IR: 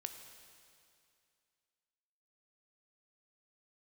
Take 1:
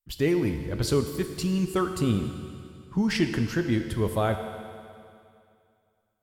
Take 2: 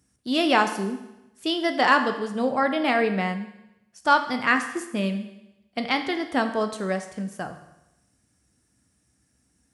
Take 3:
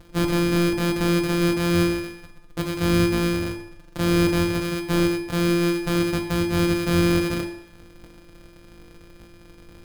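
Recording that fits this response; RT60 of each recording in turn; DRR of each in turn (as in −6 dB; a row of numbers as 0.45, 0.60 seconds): 1; 2.4, 0.95, 0.70 seconds; 6.0, 6.5, 1.5 decibels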